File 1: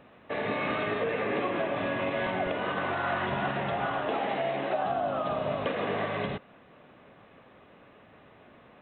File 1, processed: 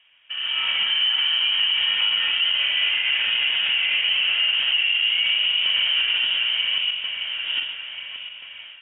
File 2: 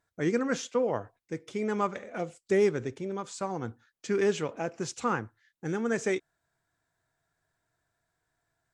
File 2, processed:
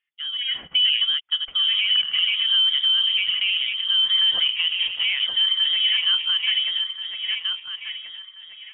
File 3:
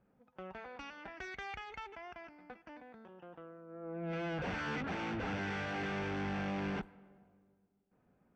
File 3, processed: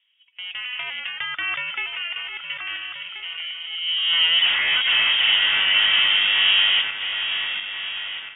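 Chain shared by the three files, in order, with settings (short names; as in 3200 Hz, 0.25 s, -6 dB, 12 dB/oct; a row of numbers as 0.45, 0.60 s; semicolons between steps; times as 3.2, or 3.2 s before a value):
regenerating reverse delay 0.691 s, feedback 61%, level -6.5 dB; dynamic EQ 460 Hz, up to +7 dB, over -43 dBFS, Q 1.2; limiter -22 dBFS; AGC gain up to 11 dB; three-band isolator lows -14 dB, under 290 Hz, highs -15 dB, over 2000 Hz; inverted band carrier 3500 Hz; match loudness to -19 LUFS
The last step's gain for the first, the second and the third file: -1.5, 0.0, +9.0 dB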